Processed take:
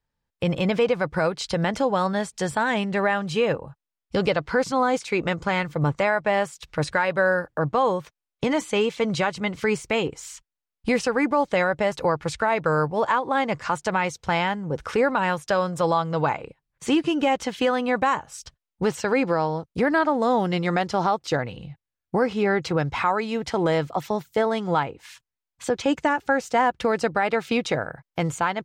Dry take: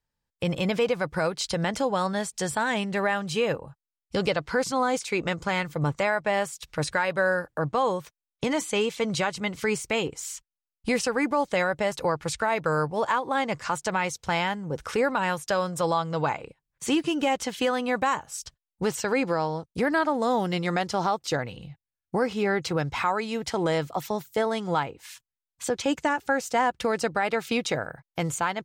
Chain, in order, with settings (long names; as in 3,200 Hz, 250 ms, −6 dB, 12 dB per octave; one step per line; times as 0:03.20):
low-pass filter 3,300 Hz 6 dB per octave
level +3.5 dB